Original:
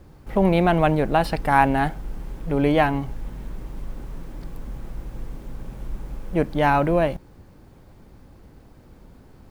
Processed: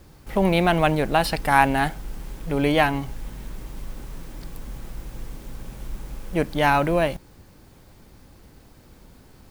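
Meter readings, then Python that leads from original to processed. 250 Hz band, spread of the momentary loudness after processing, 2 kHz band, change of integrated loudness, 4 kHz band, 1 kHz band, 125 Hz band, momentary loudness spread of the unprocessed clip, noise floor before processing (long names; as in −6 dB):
−2.0 dB, 21 LU, +2.5 dB, −0.5 dB, +6.0 dB, −0.5 dB, −2.0 dB, 20 LU, −49 dBFS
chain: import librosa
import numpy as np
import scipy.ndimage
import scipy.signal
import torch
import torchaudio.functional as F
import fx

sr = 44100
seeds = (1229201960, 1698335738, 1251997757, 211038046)

y = fx.high_shelf(x, sr, hz=2100.0, db=11.0)
y = y * librosa.db_to_amplitude(-2.0)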